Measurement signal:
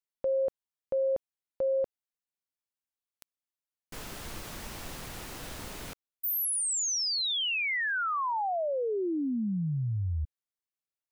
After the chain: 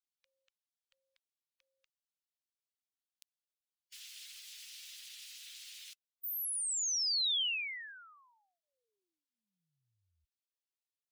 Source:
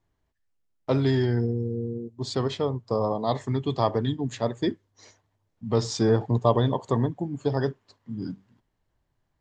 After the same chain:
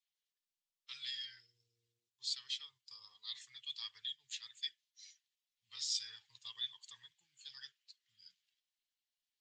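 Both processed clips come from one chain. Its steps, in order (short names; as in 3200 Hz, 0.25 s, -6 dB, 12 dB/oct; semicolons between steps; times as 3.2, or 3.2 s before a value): bin magnitudes rounded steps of 15 dB; inverse Chebyshev high-pass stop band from 690 Hz, stop band 70 dB; tilt -4 dB/oct; gain +7 dB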